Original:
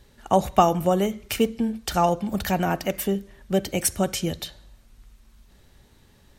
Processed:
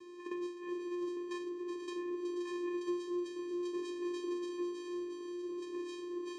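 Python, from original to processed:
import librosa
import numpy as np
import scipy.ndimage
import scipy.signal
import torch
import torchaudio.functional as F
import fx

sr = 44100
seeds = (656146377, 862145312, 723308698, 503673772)

p1 = fx.low_shelf(x, sr, hz=150.0, db=11.0)
p2 = fx.notch(p1, sr, hz=540.0, q=14.0)
p3 = fx.over_compress(p2, sr, threshold_db=-22.0, ratio=-0.5)
p4 = fx.resonator_bank(p3, sr, root=55, chord='major', decay_s=0.4)
p5 = fx.echo_pitch(p4, sr, ms=748, semitones=-5, count=2, db_per_echo=-6.0)
p6 = p5 + fx.echo_feedback(p5, sr, ms=480, feedback_pct=54, wet_db=-13.0, dry=0)
p7 = fx.vocoder(p6, sr, bands=4, carrier='square', carrier_hz=352.0)
p8 = p7 + 10.0 ** (-10.5 / 20.0) * np.pad(p7, (int(370 * sr / 1000.0), 0))[:len(p7)]
p9 = fx.band_squash(p8, sr, depth_pct=70)
y = p9 * 10.0 ** (4.0 / 20.0)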